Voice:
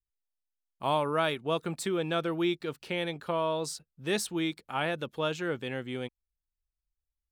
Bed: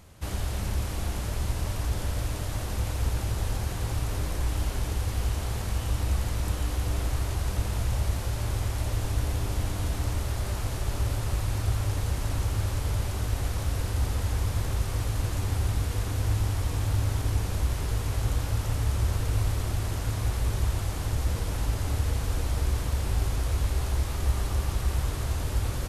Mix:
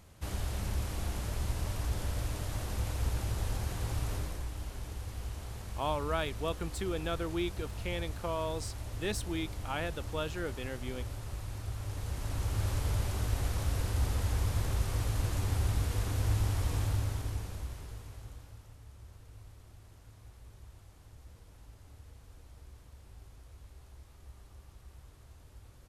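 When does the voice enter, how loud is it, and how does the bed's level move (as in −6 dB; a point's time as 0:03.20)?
4.95 s, −5.5 dB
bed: 0:04.13 −5 dB
0:04.51 −12 dB
0:11.73 −12 dB
0:12.69 −3.5 dB
0:16.79 −3.5 dB
0:18.77 −26 dB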